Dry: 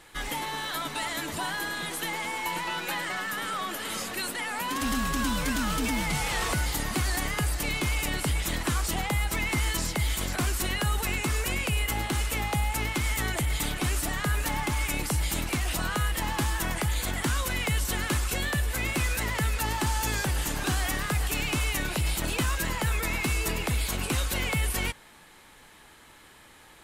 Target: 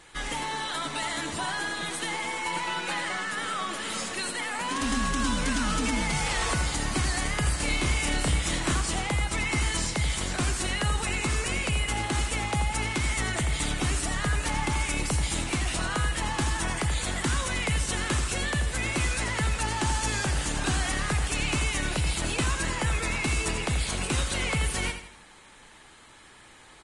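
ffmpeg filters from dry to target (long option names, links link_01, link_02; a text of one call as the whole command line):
ffmpeg -i in.wav -filter_complex "[0:a]asettb=1/sr,asplit=3[link_01][link_02][link_03];[link_01]atrim=end=7.414[link_04];[link_02]atrim=start=7.41:end=8.75,asetpts=PTS-STARTPTS,afade=type=in:duration=0.004:curve=qsin,afade=type=out:start_time=1.336:duration=0.004:curve=qsin,asplit=2[link_05][link_06];[link_06]adelay=31,volume=-4.5dB[link_07];[link_05][link_07]amix=inputs=2:normalize=0,atrim=end_sample=59094[link_08];[link_03]atrim=start=8.746[link_09];[link_04][link_08]acrossfade=duration=0.004:curve1=hsin:curve2=qsin[link_10];[link_10][link_09]acrossfade=duration=0.004:curve1=qsin:curve2=hsin,aecho=1:1:82|164|246|328:0.335|0.137|0.0563|0.0231" -ar 22050 -c:a libvorbis -b:a 32k out.ogg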